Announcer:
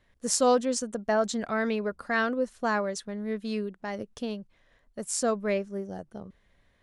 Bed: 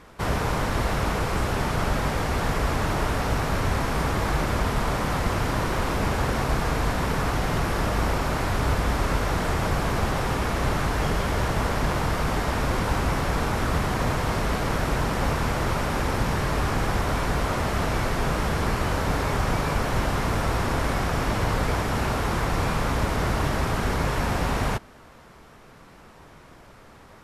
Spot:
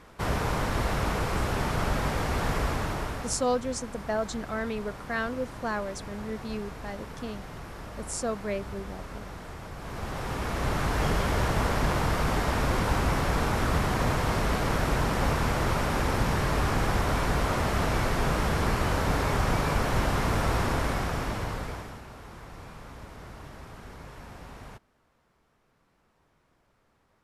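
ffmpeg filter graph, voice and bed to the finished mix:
-filter_complex "[0:a]adelay=3000,volume=0.631[s0];[1:a]volume=3.98,afade=t=out:st=2.58:d=0.88:silence=0.211349,afade=t=in:st=9.76:d=1.31:silence=0.177828,afade=t=out:st=20.59:d=1.43:silence=0.11885[s1];[s0][s1]amix=inputs=2:normalize=0"

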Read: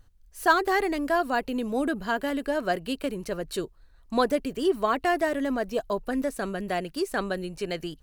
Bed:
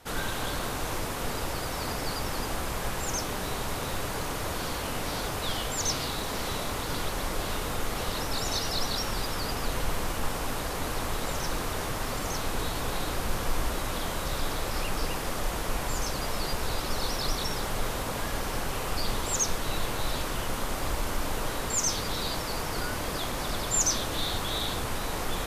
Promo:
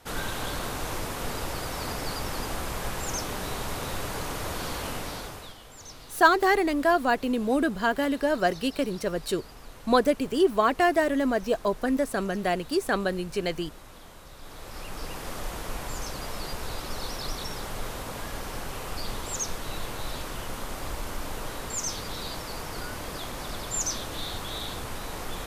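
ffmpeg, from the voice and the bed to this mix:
-filter_complex "[0:a]adelay=5750,volume=1.33[s0];[1:a]volume=3.98,afade=t=out:st=4.87:d=0.68:silence=0.158489,afade=t=in:st=14.38:d=0.94:silence=0.237137[s1];[s0][s1]amix=inputs=2:normalize=0"

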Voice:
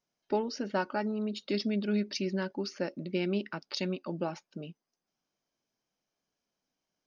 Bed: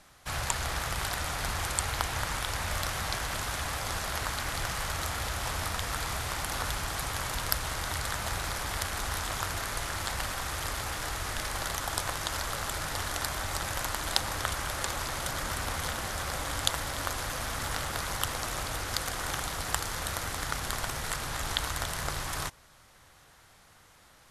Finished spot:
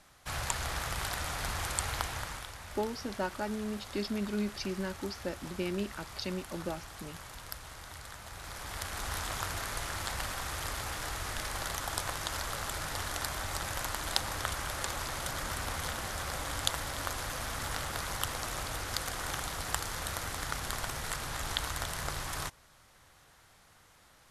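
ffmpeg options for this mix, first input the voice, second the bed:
-filter_complex "[0:a]adelay=2450,volume=0.668[s0];[1:a]volume=2.37,afade=t=out:st=1.95:d=0.59:silence=0.298538,afade=t=in:st=8.32:d=0.85:silence=0.298538[s1];[s0][s1]amix=inputs=2:normalize=0"

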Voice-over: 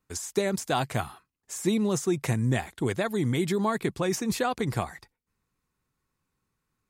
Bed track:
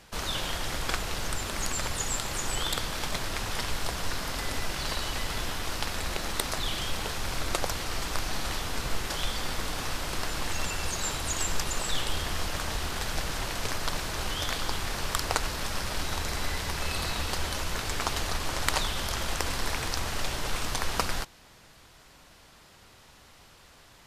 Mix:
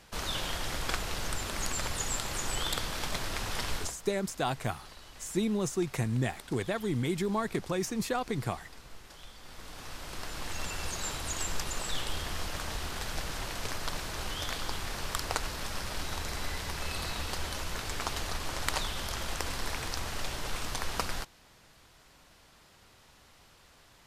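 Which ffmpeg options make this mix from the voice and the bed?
-filter_complex "[0:a]adelay=3700,volume=0.596[s0];[1:a]volume=3.98,afade=t=out:st=3.75:d=0.21:silence=0.149624,afade=t=in:st=9.4:d=1.4:silence=0.188365[s1];[s0][s1]amix=inputs=2:normalize=0"

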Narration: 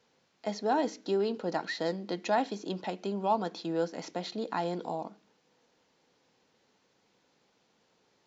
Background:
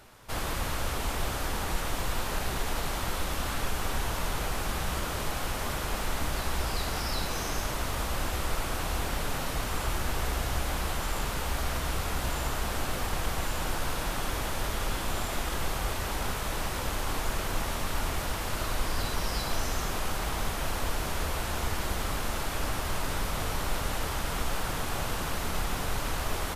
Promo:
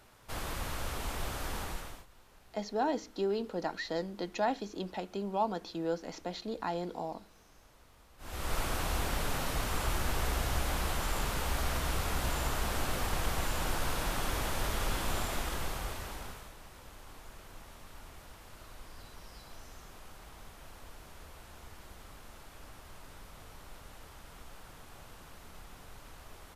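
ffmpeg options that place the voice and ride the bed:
-filter_complex "[0:a]adelay=2100,volume=0.708[s0];[1:a]volume=11.9,afade=t=out:st=1.59:d=0.47:silence=0.0668344,afade=t=in:st=8.18:d=0.4:silence=0.0421697,afade=t=out:st=15.14:d=1.4:silence=0.125893[s1];[s0][s1]amix=inputs=2:normalize=0"

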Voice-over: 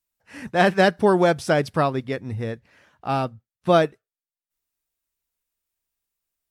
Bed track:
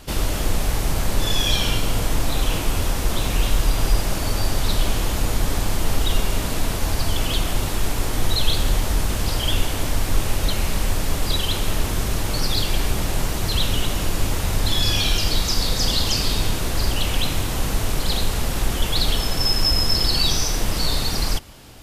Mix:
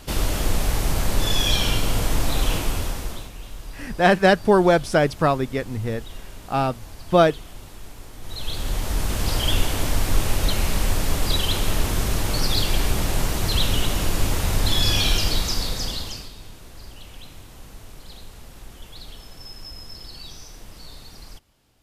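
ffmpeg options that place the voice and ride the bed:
-filter_complex "[0:a]adelay=3450,volume=1.19[s0];[1:a]volume=7.5,afade=t=out:st=2.51:d=0.8:silence=0.133352,afade=t=in:st=8.21:d=1.16:silence=0.125893,afade=t=out:st=15.12:d=1.19:silence=0.1[s1];[s0][s1]amix=inputs=2:normalize=0"

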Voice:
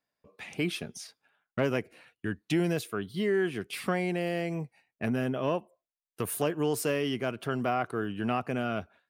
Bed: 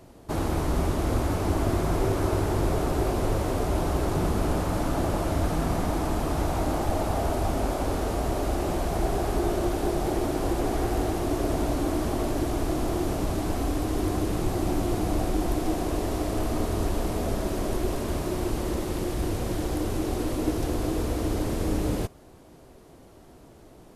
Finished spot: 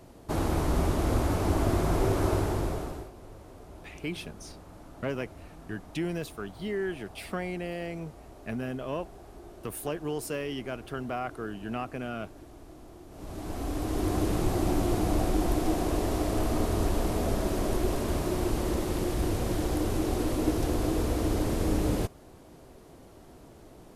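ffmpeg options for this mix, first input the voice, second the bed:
-filter_complex "[0:a]adelay=3450,volume=0.596[s0];[1:a]volume=10.6,afade=t=out:st=2.31:d=0.79:silence=0.0891251,afade=t=in:st=13.1:d=1.14:silence=0.0841395[s1];[s0][s1]amix=inputs=2:normalize=0"

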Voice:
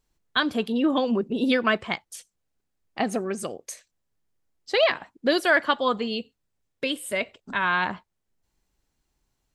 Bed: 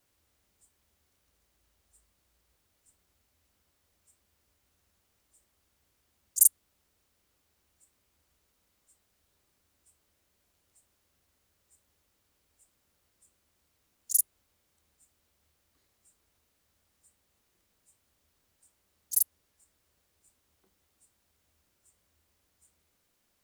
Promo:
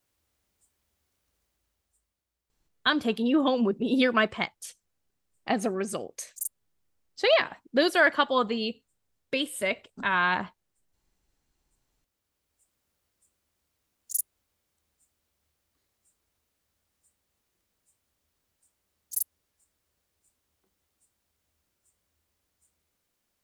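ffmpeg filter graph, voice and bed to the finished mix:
-filter_complex "[0:a]adelay=2500,volume=0.891[s0];[1:a]volume=2.11,afade=t=out:st=1.38:d=0.86:silence=0.298538,afade=t=in:st=11.73:d=1.03:silence=0.334965[s1];[s0][s1]amix=inputs=2:normalize=0"

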